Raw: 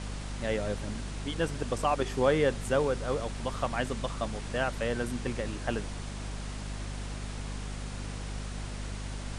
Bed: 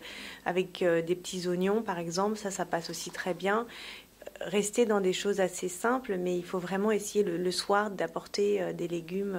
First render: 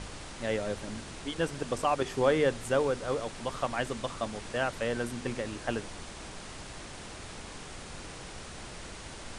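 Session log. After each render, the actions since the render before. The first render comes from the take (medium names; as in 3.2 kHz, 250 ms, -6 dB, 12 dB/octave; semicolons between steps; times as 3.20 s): hum notches 50/100/150/200/250 Hz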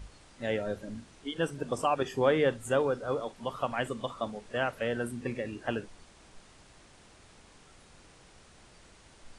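noise print and reduce 13 dB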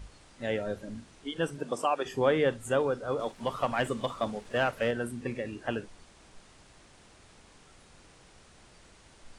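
1.56–2.04 s: high-pass 120 Hz -> 400 Hz; 3.19–4.91 s: waveshaping leveller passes 1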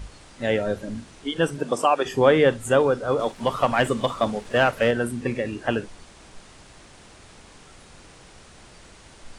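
trim +8.5 dB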